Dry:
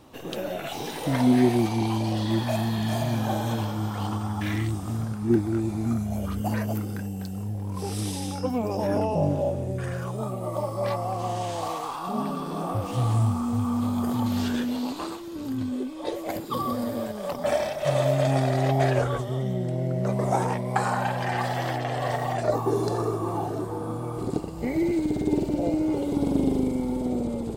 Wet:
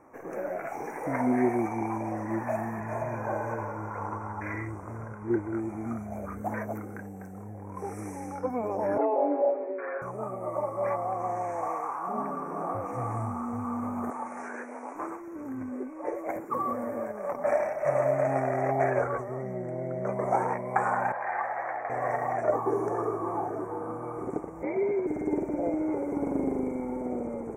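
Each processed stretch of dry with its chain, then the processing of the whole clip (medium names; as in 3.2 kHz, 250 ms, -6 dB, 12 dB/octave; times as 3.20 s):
2.80–5.54 s: treble shelf 7.1 kHz -9 dB + comb 2 ms, depth 48%
8.98–10.02 s: Chebyshev band-pass 280–3500 Hz, order 5 + comb 7.3 ms, depth 99%
14.10–14.95 s: high-pass 460 Hz + careless resampling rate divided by 2×, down none, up filtered
21.12–21.90 s: high-pass 52 Hz + three-band isolator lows -19 dB, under 530 Hz, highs -16 dB, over 2.6 kHz
24.63–25.07 s: frequency shift +61 Hz + distance through air 130 m
whole clip: Chebyshev band-stop 2.3–5.8 kHz, order 4; tone controls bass -12 dB, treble -14 dB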